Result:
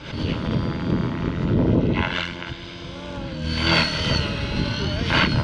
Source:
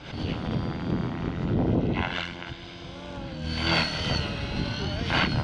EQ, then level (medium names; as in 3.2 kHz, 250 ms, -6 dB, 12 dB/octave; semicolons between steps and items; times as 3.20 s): Butterworth band-stop 750 Hz, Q 5.5; +5.5 dB